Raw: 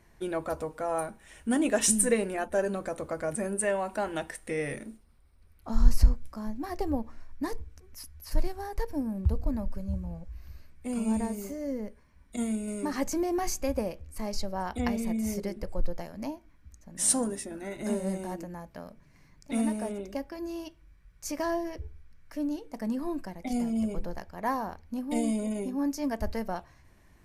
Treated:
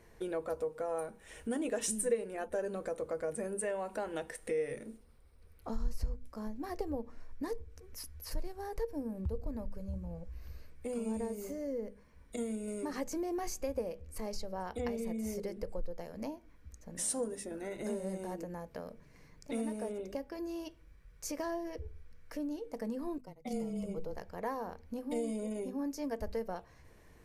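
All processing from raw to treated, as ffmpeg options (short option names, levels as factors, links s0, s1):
-filter_complex "[0:a]asettb=1/sr,asplit=3[s0][s1][s2];[s0]atrim=end=23.184[s3];[s1]atrim=start=23.18:end=24.13,asetpts=PTS-STARTPTS,afade=t=in:d=0.004:c=qsin,afade=t=out:st=0.946:d=0.004:c=qsin,agate=range=0.0224:threshold=0.0251:ratio=3:release=100:detection=peak,asuperstop=centerf=1700:order=8:qfactor=5.4,afreqshift=-20[s4];[s2]atrim=start=24.126[s5];[s3][s4]acrossfade=d=0.004:c1=hsin:c2=qsin[s6];[s6][s5]acrossfade=d=0.004:c1=qsin:c2=hsin,equalizer=f=470:w=4.7:g=12,bandreject=f=50:t=h:w=6,bandreject=f=100:t=h:w=6,bandreject=f=150:t=h:w=6,bandreject=f=200:t=h:w=6,bandreject=f=250:t=h:w=6,acompressor=threshold=0.00891:ratio=2"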